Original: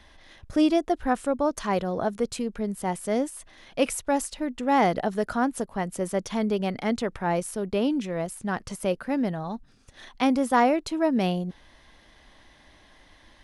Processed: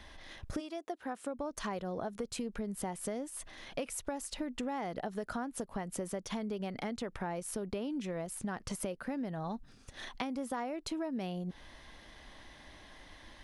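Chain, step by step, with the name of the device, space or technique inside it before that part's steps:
serial compression, peaks first (downward compressor 5 to 1, threshold −31 dBFS, peak gain reduction 14 dB; downward compressor 2.5 to 1, threshold −37 dBFS, peak gain reduction 7 dB)
0:00.59–0:01.36: high-pass filter 550 Hz → 150 Hz 12 dB per octave
level +1 dB

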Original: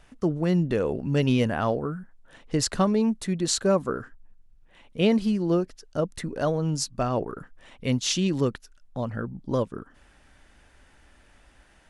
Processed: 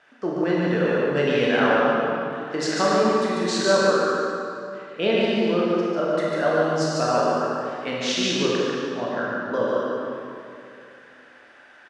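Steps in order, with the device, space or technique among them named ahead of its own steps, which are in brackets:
station announcement (band-pass filter 340–4,500 Hz; parametric band 1,600 Hz +8 dB 0.4 octaves; loudspeakers that aren't time-aligned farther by 50 metres −3 dB, 65 metres −11 dB; convolution reverb RT60 2.6 s, pre-delay 22 ms, DRR −4 dB)

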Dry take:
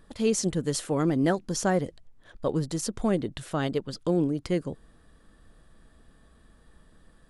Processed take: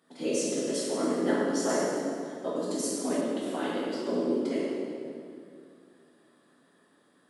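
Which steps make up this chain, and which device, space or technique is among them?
whispering ghost (random phases in short frames; high-pass filter 240 Hz 24 dB per octave; convolution reverb RT60 2.4 s, pre-delay 8 ms, DRR −6.5 dB)
0:01.69–0:03.21: high-shelf EQ 4,800 Hz +5.5 dB
level −8.5 dB

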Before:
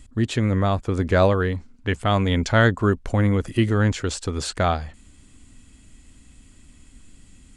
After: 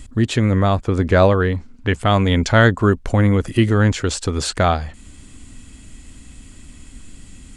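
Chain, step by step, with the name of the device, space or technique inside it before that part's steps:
parallel compression (in parallel at −1 dB: downward compressor, threshold −36 dBFS, peak gain reduction 21.5 dB)
0:00.77–0:01.95: on the sum: high-shelf EQ 6,500 Hz −5.5 dB
level +3.5 dB

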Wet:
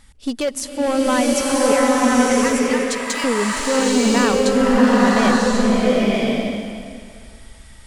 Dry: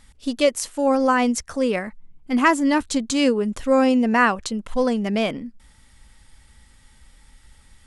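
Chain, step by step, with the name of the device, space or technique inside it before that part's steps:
limiter into clipper (brickwall limiter −12.5 dBFS, peak gain reduction 8 dB; hard clipping −17.5 dBFS, distortion −15 dB)
0:01.72–0:03.24: high-pass filter 1,200 Hz 12 dB per octave
slow-attack reverb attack 1,060 ms, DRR −6 dB
level +2 dB

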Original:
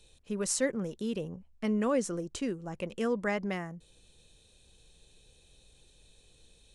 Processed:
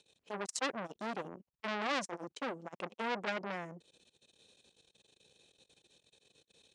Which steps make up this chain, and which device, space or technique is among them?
public-address speaker with an overloaded transformer (saturating transformer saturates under 3,300 Hz; band-pass filter 210–7,000 Hz)
level +1 dB

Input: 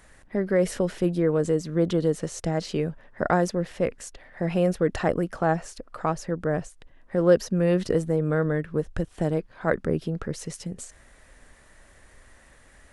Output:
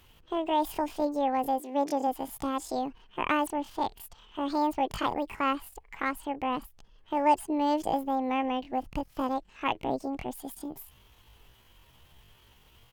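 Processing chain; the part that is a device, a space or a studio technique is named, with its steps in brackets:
0:01.59–0:02.08: high-pass filter 180 Hz → 70 Hz 24 dB per octave
chipmunk voice (pitch shifter +9 semitones)
level −5 dB

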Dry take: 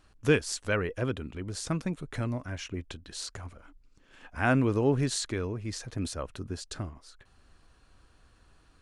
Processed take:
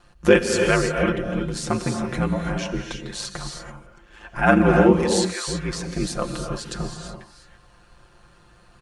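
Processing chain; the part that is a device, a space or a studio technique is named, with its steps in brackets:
parametric band 840 Hz +4.5 dB 2.6 octaves
0:04.98–0:05.47: high-pass filter 420 Hz → 900 Hz 24 dB per octave
ring-modulated robot voice (ring modulation 53 Hz; comb filter 5.7 ms, depth 68%)
reverb whose tail is shaped and stops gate 360 ms rising, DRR 3.5 dB
level +7 dB

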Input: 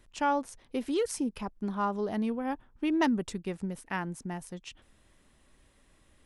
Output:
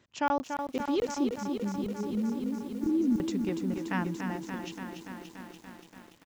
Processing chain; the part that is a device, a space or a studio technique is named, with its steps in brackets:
call with lost packets (high-pass filter 100 Hz 24 dB per octave; downsampling to 16,000 Hz; dropped packets random)
0:01.34–0:03.18: elliptic band-stop filter 350–7,400 Hz, stop band 40 dB
low-shelf EQ 120 Hz +5.5 dB
feedback echo at a low word length 288 ms, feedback 80%, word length 9 bits, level −6.5 dB

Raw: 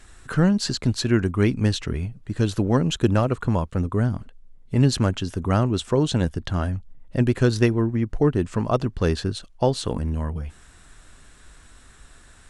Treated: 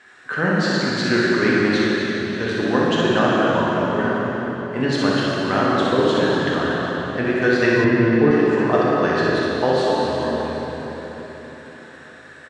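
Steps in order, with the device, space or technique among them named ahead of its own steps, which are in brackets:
station announcement (band-pass filter 310–4,000 Hz; parametric band 1,700 Hz +8 dB 0.47 octaves; loudspeakers that aren't time-aligned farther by 21 metres −4 dB, 83 metres −11 dB; convolution reverb RT60 4.2 s, pre-delay 3 ms, DRR −5 dB)
0:07.84–0:08.31: bass and treble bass +7 dB, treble −9 dB

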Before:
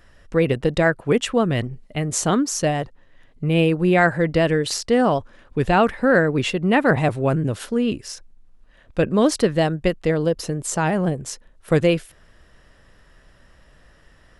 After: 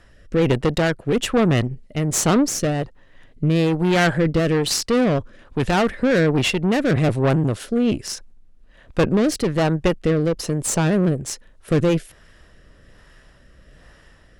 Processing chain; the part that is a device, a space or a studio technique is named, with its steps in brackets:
overdriven rotary cabinet (tube saturation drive 20 dB, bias 0.6; rotating-speaker cabinet horn 1.2 Hz)
level +8 dB

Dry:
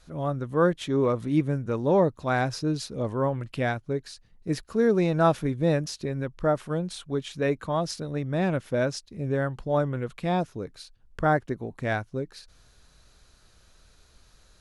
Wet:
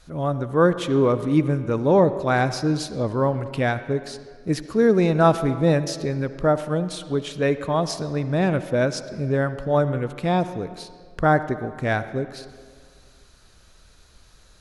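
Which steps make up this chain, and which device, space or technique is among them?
filtered reverb send (on a send: high-pass filter 170 Hz + low-pass filter 5,500 Hz 12 dB per octave + convolution reverb RT60 1.9 s, pre-delay 57 ms, DRR 12 dB)
on the sum: level +4.5 dB

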